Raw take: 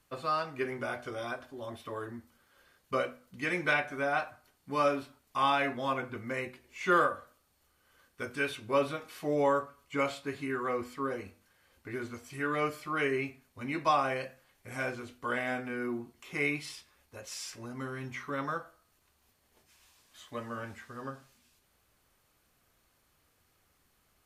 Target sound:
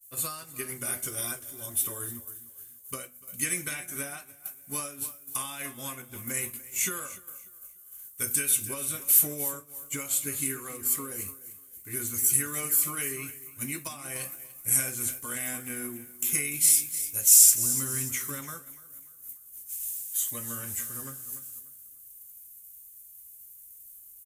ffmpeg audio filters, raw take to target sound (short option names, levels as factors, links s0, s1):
-filter_complex "[0:a]alimiter=limit=0.0944:level=0:latency=1:release=310,acompressor=threshold=0.0178:ratio=5,asplit=2[s0][s1];[s1]aecho=0:1:294|588|882|1176:0.251|0.103|0.0422|0.0173[s2];[s0][s2]amix=inputs=2:normalize=0,crystalizer=i=4:c=0,equalizer=f=740:w=0.64:g=-7.5,aexciter=amount=9.3:drive=3.4:freq=6800,lowshelf=f=180:g=8,agate=range=0.0224:threshold=0.0251:ratio=3:detection=peak,volume=1.19"